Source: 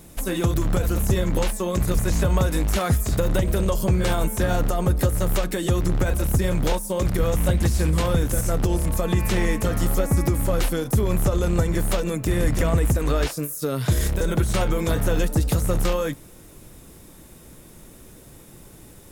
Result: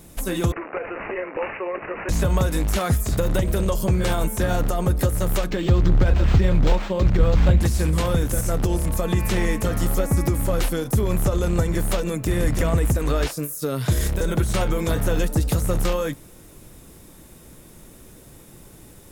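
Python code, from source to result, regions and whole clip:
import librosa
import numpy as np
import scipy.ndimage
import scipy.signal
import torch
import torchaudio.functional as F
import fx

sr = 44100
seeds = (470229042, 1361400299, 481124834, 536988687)

y = fx.chain(x, sr, fx.highpass(hz=380.0, slope=24),
    fx.resample_bad(factor=8, down='none', up='filtered'), at=(0.52, 2.09))
y = fx.chain(y, sr, fx.low_shelf(hz=140.0, db=7.0),
    fx.resample_linear(factor=4), at=(5.5, 7.61))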